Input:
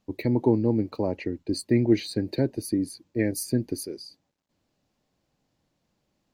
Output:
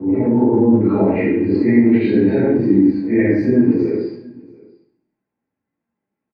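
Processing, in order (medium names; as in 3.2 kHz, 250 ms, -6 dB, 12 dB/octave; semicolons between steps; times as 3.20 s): phase randomisation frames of 200 ms; low-pass 1.2 kHz 24 dB/octave, from 0.81 s 2.2 kHz; gate with hold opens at -53 dBFS; high-pass 49 Hz; hum notches 50/100/150/200/250/300 Hz; compression 6:1, threshold -28 dBFS, peak gain reduction 12 dB; transient shaper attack +1 dB, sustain +7 dB; delay 685 ms -24 dB; reverberation RT60 0.60 s, pre-delay 3 ms, DRR -4.5 dB; trim +9 dB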